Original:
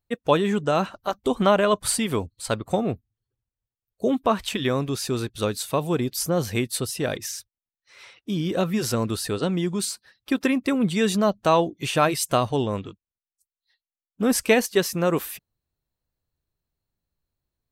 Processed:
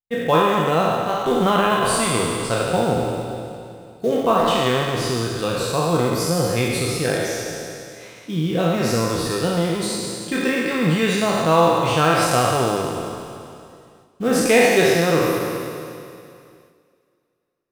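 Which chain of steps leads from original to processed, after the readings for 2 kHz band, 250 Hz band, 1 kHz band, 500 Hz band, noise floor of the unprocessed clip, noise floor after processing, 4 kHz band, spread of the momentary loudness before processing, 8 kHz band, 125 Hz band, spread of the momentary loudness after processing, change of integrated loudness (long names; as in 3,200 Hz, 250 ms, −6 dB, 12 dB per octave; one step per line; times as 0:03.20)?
+7.0 dB, +2.5 dB, +6.5 dB, +5.0 dB, below −85 dBFS, −63 dBFS, +5.0 dB, 9 LU, +3.0 dB, +5.5 dB, 15 LU, +4.5 dB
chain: peak hold with a decay on every bin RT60 2.45 s
noise gate with hold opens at −41 dBFS
high-shelf EQ 7,200 Hz −9.5 dB
in parallel at −3 dB: floating-point word with a short mantissa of 2 bits
on the sum: coupled-rooms reverb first 0.26 s, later 2.5 s, from −18 dB, DRR 4 dB
level −6 dB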